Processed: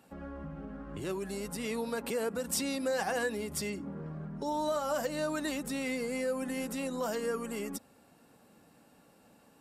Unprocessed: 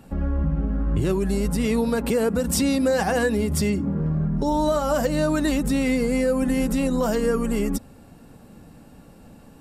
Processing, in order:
high-pass filter 520 Hz 6 dB per octave
level −7.5 dB

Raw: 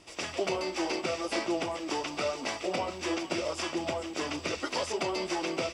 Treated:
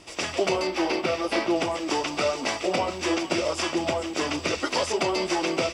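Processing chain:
0:00.67–0:01.56: parametric band 7,500 Hz −9 dB 0.89 octaves
level +6.5 dB

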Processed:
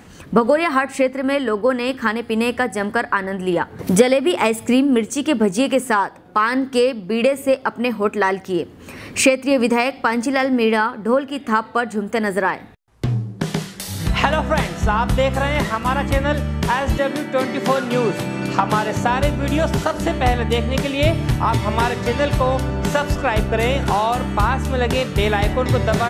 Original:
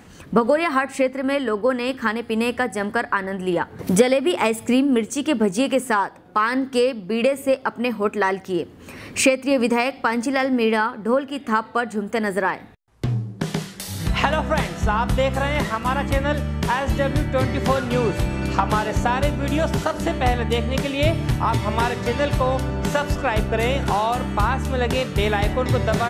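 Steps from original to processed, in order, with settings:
0:16.97–0:19.09: high-pass filter 240 Hz → 95 Hz 24 dB per octave
level +2.5 dB

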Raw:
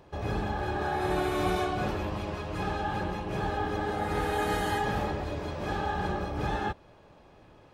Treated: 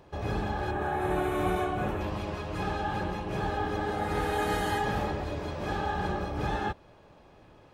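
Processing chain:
0:00.71–0:02.01: parametric band 4,800 Hz −14 dB 0.8 octaves

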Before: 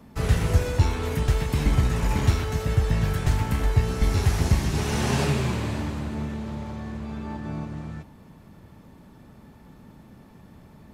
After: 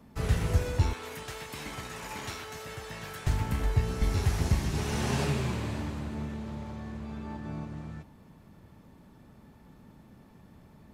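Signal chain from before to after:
0:00.93–0:03.27: high-pass filter 810 Hz 6 dB per octave
level −5.5 dB

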